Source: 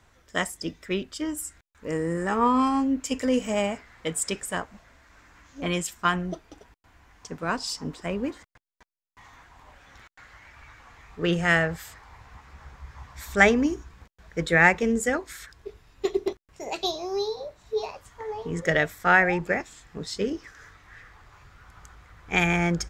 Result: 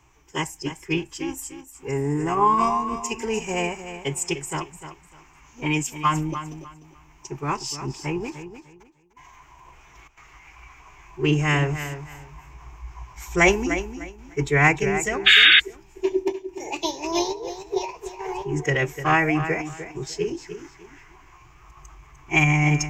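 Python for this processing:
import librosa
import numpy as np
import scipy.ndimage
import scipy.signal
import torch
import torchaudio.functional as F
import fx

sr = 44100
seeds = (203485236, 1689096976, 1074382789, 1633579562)

p1 = fx.ripple_eq(x, sr, per_octave=0.75, db=13)
p2 = p1 + fx.echo_feedback(p1, sr, ms=300, feedback_pct=24, wet_db=-11.0, dry=0)
p3 = fx.spec_paint(p2, sr, seeds[0], shape='noise', start_s=15.26, length_s=0.34, low_hz=1400.0, high_hz=4300.0, level_db=-12.0)
y = fx.pitch_keep_formants(p3, sr, semitones=-2.5)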